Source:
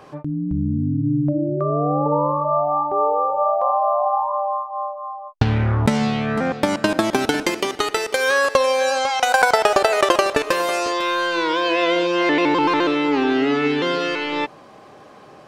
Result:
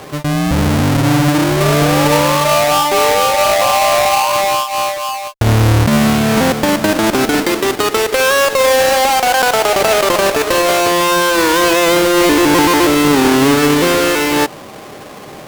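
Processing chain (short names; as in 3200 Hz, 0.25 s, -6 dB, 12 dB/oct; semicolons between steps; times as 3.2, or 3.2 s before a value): half-waves squared off; limiter -11.5 dBFS, peak gain reduction 9 dB; added harmonics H 5 -21 dB, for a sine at -11.5 dBFS; gain +4.5 dB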